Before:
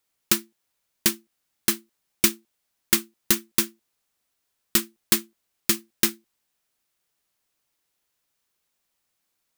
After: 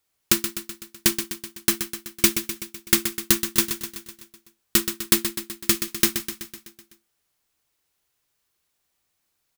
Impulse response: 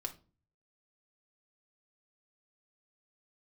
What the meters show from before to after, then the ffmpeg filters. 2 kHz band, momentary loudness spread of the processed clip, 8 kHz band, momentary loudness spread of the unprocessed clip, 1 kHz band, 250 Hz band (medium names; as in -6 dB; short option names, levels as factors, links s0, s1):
+2.0 dB, 14 LU, +2.0 dB, 4 LU, +2.0 dB, +2.5 dB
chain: -filter_complex "[0:a]equalizer=f=76:t=o:w=0.89:g=9,aecho=1:1:126|252|378|504|630|756|882:0.355|0.213|0.128|0.0766|0.046|0.0276|0.0166,asplit=2[s0][s1];[1:a]atrim=start_sample=2205,atrim=end_sample=3087[s2];[s1][s2]afir=irnorm=-1:irlink=0,volume=0.631[s3];[s0][s3]amix=inputs=2:normalize=0,volume=0.794"